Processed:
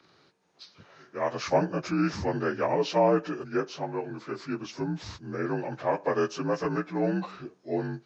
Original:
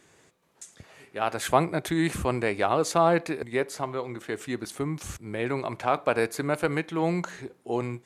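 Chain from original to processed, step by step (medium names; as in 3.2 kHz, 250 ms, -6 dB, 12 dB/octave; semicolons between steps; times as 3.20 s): frequency axis rescaled in octaves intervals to 84%; dynamic bell 3.8 kHz, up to -4 dB, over -54 dBFS, Q 3.5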